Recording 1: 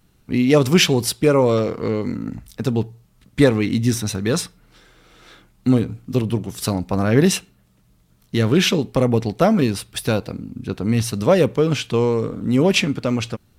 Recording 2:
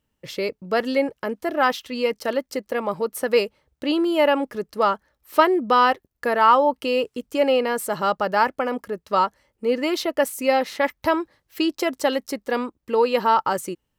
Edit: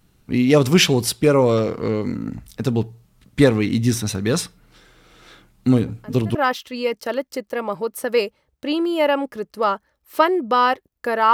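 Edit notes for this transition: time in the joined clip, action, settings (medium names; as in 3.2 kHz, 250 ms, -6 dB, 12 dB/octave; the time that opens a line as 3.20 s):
recording 1
5.87 s: add recording 2 from 1.06 s 0.48 s -15 dB
6.35 s: go over to recording 2 from 1.54 s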